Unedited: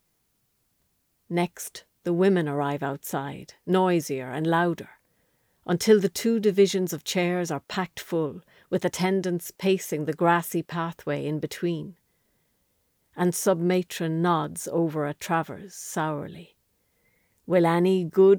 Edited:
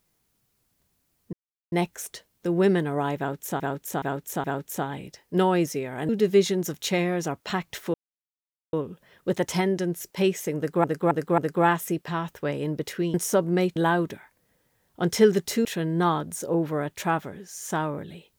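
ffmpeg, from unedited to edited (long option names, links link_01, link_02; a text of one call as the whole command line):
ffmpeg -i in.wav -filter_complex "[0:a]asplit=13[link_01][link_02][link_03][link_04][link_05][link_06][link_07][link_08][link_09][link_10][link_11][link_12][link_13];[link_01]atrim=end=1.33,asetpts=PTS-STARTPTS,afade=type=out:start_time=1.326:duration=0.004:curve=hsin,apad=pad_dur=0.39[link_14];[link_02]atrim=start=1.33:end=3.212,asetpts=PTS-STARTPTS,afade=type=in:duration=0.004:curve=hsin[link_15];[link_03]atrim=start=2.788:end=3.212[link_16];[link_04]atrim=start=2.788:end=3.212[link_17];[link_05]atrim=start=2.788:end=4.442[link_18];[link_06]atrim=start=6.328:end=8.18,asetpts=PTS-STARTPTS,afade=type=out:start_time=1.848:duration=0.004:curve=hsin,apad=pad_dur=0.79[link_19];[link_07]atrim=start=8.18:end=10.292,asetpts=PTS-STARTPTS,afade=type=in:duration=0.004:curve=hsin[link_20];[link_08]atrim=start=10.018:end=10.292[link_21];[link_09]atrim=start=10.018:end=10.292[link_22];[link_10]atrim=start=10.018:end=11.782[link_23];[link_11]atrim=start=13.268:end=13.892[link_24];[link_12]atrim=start=4.438:end=6.332[link_25];[link_13]atrim=start=13.888[link_26];[link_14][link_15]concat=n=2:v=0:a=1[link_27];[link_27][link_16]acrossfade=duration=0.004:curve1=hsin:curve2=hsin[link_28];[link_28][link_17]acrossfade=duration=0.004:curve1=hsin:curve2=hsin[link_29];[link_29][link_18]acrossfade=duration=0.004:curve1=hsin:curve2=hsin[link_30];[link_19][link_20]concat=n=2:v=0:a=1[link_31];[link_30][link_31]acrossfade=duration=0.004:curve1=hsin:curve2=hsin[link_32];[link_32][link_21]acrossfade=duration=0.004:curve1=hsin:curve2=hsin[link_33];[link_33][link_22]acrossfade=duration=0.004:curve1=hsin:curve2=hsin[link_34];[link_34][link_23]acrossfade=duration=0.004:curve1=hsin:curve2=hsin[link_35];[link_35][link_24]acrossfade=duration=0.004:curve1=hsin:curve2=hsin[link_36];[link_36][link_25]acrossfade=duration=0.004:curve1=hsin:curve2=hsin[link_37];[link_37][link_26]acrossfade=duration=0.004:curve1=hsin:curve2=hsin" out.wav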